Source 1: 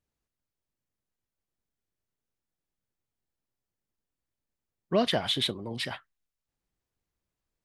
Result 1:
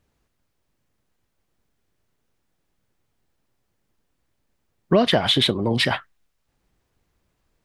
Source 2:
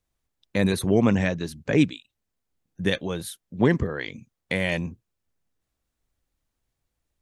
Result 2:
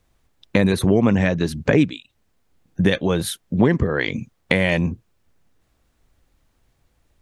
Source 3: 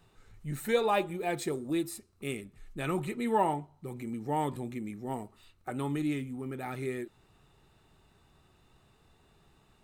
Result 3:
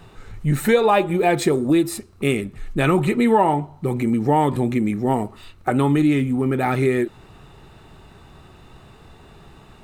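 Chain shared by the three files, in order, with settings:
high-shelf EQ 4,200 Hz −7.5 dB
downward compressor 3 to 1, threshold −33 dBFS
loudness normalisation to −20 LKFS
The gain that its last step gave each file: +16.5, +16.0, +18.5 decibels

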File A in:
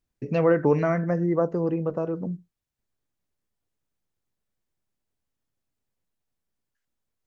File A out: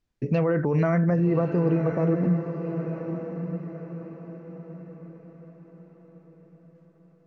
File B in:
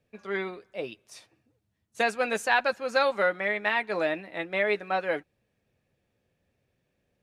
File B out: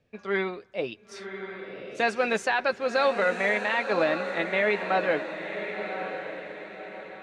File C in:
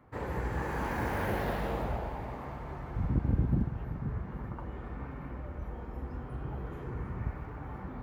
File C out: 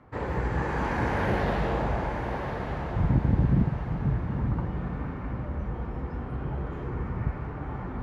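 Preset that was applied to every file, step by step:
low-pass filter 5,900 Hz 12 dB per octave
dynamic equaliser 150 Hz, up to +5 dB, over −40 dBFS, Q 2
brickwall limiter −18.5 dBFS
on a send: feedback delay with all-pass diffusion 1,086 ms, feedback 41%, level −7.5 dB
on the sum: normalise the peak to −12 dBFS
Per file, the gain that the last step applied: +3.0, +4.0, +5.0 decibels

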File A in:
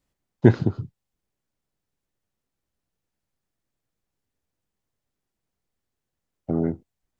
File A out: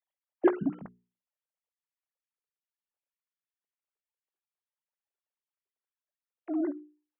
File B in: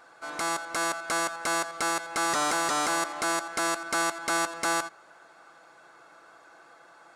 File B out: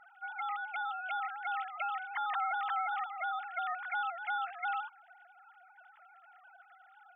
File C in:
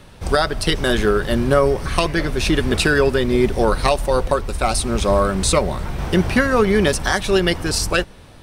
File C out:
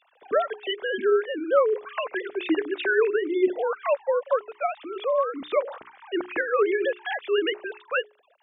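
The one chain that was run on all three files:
three sine waves on the formant tracks
mains-hum notches 60/120/180/240/300/360/420 Hz
level −7.5 dB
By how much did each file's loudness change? −8.0, −8.0, −7.5 LU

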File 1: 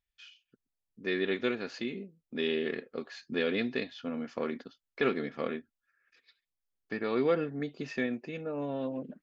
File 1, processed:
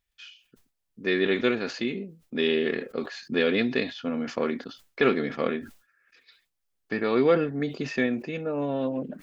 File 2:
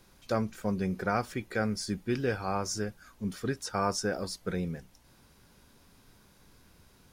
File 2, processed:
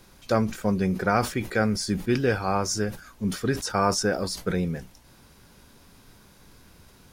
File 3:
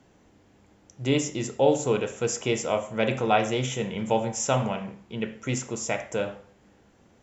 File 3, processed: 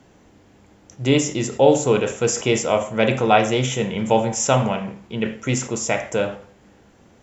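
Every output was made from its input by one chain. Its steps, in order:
level that may fall only so fast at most 140 dB per second
level +6.5 dB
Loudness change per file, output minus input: +6.5, +7.0, +6.5 LU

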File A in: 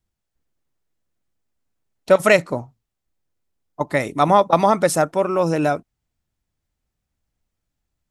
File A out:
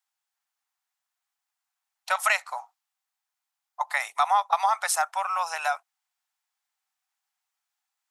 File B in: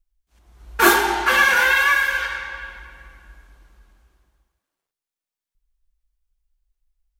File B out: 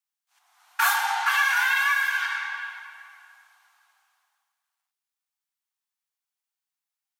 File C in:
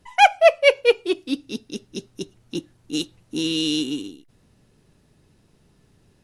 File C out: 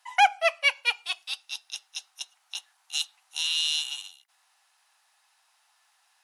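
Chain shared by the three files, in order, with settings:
Chebyshev high-pass filter 760 Hz, order 5
downward compressor 2 to 1, threshold −25 dBFS
normalise the peak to −9 dBFS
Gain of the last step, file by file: +2.0, +1.0, +3.0 decibels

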